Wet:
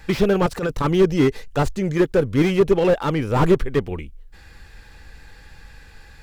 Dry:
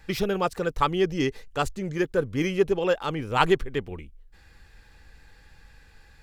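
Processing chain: 0.46–0.96 transient shaper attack -12 dB, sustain +2 dB; slew limiter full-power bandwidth 45 Hz; gain +8.5 dB

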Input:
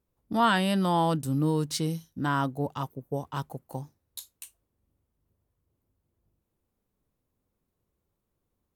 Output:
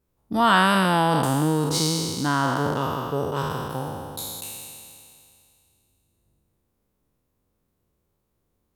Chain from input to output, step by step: spectral trails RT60 2.40 s; gain +2.5 dB

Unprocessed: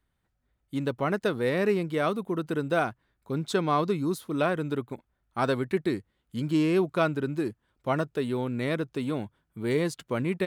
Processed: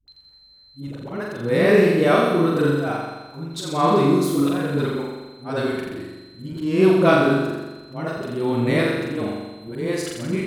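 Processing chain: whine 4100 Hz -50 dBFS; auto swell 0.301 s; dispersion highs, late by 80 ms, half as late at 380 Hz; on a send: flutter echo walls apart 7.3 m, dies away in 1.2 s; on the sum: gain +6.5 dB

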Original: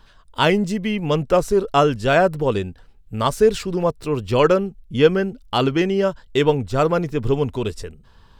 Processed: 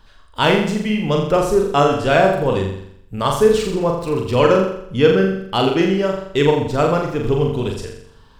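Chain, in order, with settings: flutter echo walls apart 7.2 m, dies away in 0.7 s

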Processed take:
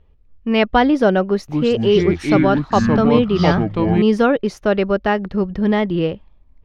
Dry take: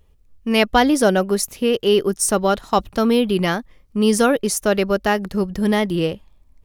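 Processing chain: 1.27–4.02 echoes that change speed 0.219 s, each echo -5 st, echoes 3; air absorption 270 m; gain +2 dB

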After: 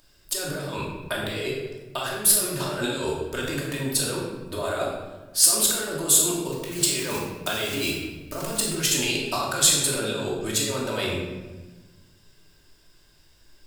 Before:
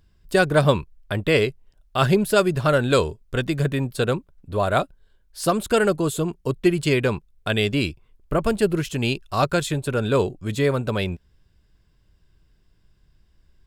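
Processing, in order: 6.51–8.67 block floating point 5-bit; notches 60/120/180/240 Hz; negative-ratio compressor -28 dBFS, ratio -1; tone controls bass -15 dB, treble +10 dB; shoebox room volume 840 m³, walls mixed, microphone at 2.7 m; gain -2.5 dB

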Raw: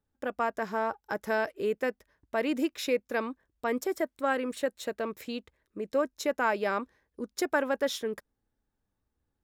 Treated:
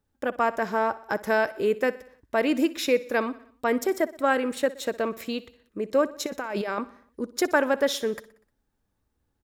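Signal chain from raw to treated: 6.26–6.78 negative-ratio compressor -36 dBFS, ratio -1; feedback echo 61 ms, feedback 56%, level -18.5 dB; gain +5.5 dB

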